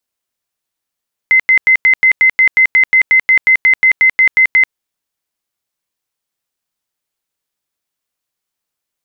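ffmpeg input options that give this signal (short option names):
-f lavfi -i "aevalsrc='0.562*sin(2*PI*2060*mod(t,0.18))*lt(mod(t,0.18),179/2060)':d=3.42:s=44100"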